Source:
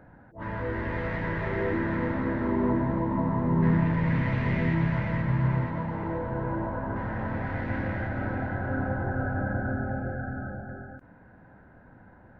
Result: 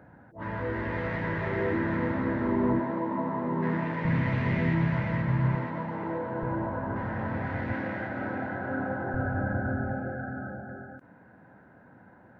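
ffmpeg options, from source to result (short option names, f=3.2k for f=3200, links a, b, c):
-af "asetnsamples=n=441:p=0,asendcmd='2.8 highpass f 260;4.05 highpass f 79;5.55 highpass f 180;6.43 highpass f 75;7.73 highpass f 180;9.14 highpass f 55;9.93 highpass f 130',highpass=75"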